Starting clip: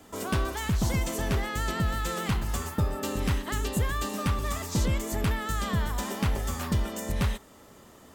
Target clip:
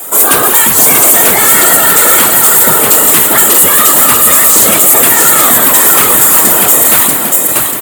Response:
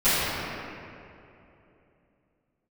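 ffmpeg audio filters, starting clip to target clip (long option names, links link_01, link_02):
-filter_complex "[0:a]aexciter=amount=5.6:drive=8:freq=7400,asetrate=45938,aresample=44100,aecho=1:1:638|1276|1914|2552|3190:0.562|0.247|0.109|0.0479|0.0211,asplit=2[link_01][link_02];[1:a]atrim=start_sample=2205,atrim=end_sample=3528,adelay=143[link_03];[link_02][link_03]afir=irnorm=-1:irlink=0,volume=-25dB[link_04];[link_01][link_04]amix=inputs=2:normalize=0,afftfilt=real='hypot(re,im)*cos(2*PI*random(0))':imag='hypot(re,im)*sin(2*PI*random(1))':win_size=512:overlap=0.75,highpass=400,apsyclip=30dB,volume=-1.5dB"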